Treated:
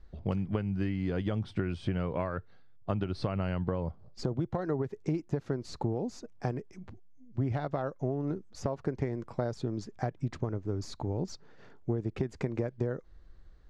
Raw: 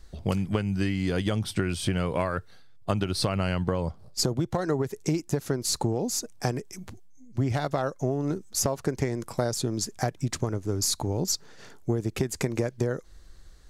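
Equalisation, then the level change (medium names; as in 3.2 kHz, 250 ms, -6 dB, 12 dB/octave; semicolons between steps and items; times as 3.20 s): tape spacing loss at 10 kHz 25 dB; treble shelf 6.6 kHz -5.5 dB; -4.0 dB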